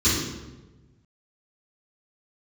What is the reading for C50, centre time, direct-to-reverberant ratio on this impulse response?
0.0 dB, 73 ms, -13.5 dB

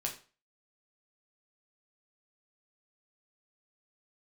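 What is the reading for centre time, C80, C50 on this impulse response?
16 ms, 15.0 dB, 10.0 dB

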